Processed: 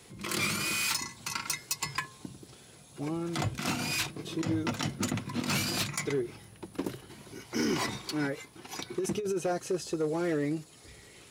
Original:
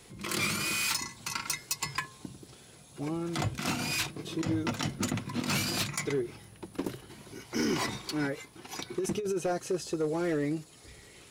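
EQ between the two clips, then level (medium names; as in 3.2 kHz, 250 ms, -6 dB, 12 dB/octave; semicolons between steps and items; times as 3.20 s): high-pass 49 Hz; 0.0 dB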